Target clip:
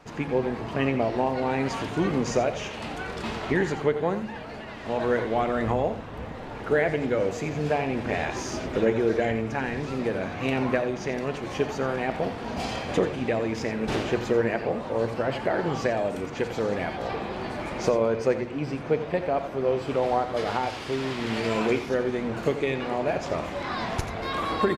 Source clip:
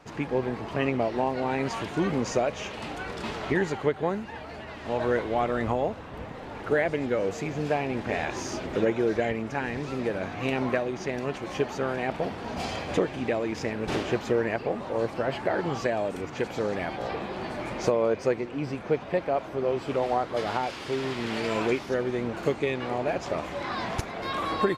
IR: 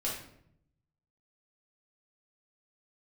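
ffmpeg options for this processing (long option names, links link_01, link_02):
-filter_complex "[0:a]aecho=1:1:87:0.266,asplit=2[link_01][link_02];[1:a]atrim=start_sample=2205,lowshelf=frequency=170:gain=12[link_03];[link_02][link_03]afir=irnorm=-1:irlink=0,volume=-17dB[link_04];[link_01][link_04]amix=inputs=2:normalize=0"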